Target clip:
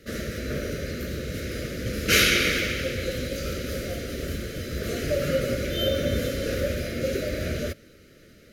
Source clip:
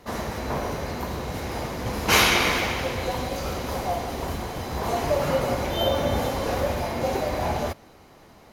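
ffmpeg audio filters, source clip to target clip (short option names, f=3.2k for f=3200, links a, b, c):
-af "asuperstop=centerf=890:order=8:qfactor=1.2"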